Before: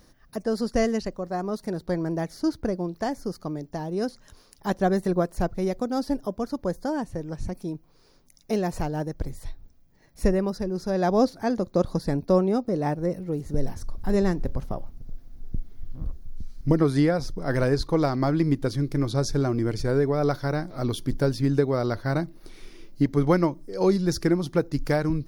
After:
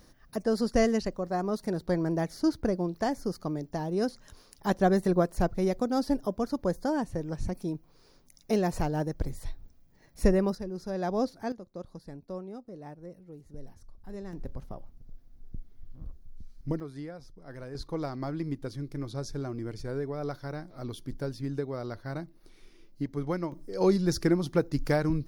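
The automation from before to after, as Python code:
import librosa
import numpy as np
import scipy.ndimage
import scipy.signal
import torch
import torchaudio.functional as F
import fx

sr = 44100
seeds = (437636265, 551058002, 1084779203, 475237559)

y = fx.gain(x, sr, db=fx.steps((0.0, -1.0), (10.55, -8.0), (11.52, -18.5), (14.33, -10.5), (16.8, -19.5), (17.75, -11.0), (23.52, -2.5)))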